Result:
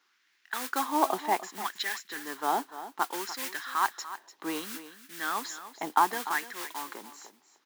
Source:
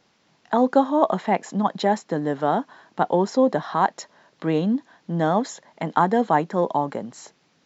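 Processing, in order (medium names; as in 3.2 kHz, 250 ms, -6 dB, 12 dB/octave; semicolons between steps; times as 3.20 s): dynamic bell 4.5 kHz, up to +6 dB, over -42 dBFS, Q 0.75; modulation noise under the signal 14 dB; resonant low shelf 450 Hz +9 dB, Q 3; LFO high-pass sine 0.65 Hz 740–1800 Hz; on a send: delay 295 ms -13.5 dB; on the sum: trim -7.5 dB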